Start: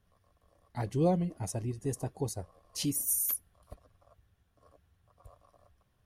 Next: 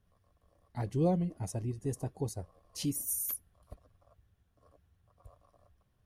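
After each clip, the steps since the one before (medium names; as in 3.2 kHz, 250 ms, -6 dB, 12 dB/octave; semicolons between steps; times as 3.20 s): bass shelf 480 Hz +4.5 dB; trim -4.5 dB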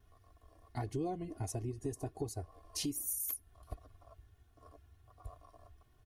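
comb 2.8 ms, depth 69%; compression 4:1, threshold -41 dBFS, peak gain reduction 14 dB; vibrato 1.4 Hz 24 cents; trim +4.5 dB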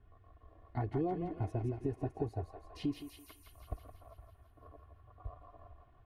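distance through air 480 m; thinning echo 167 ms, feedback 67%, high-pass 760 Hz, level -4 dB; trim +3.5 dB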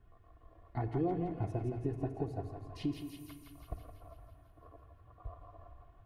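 simulated room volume 3500 m³, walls mixed, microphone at 0.77 m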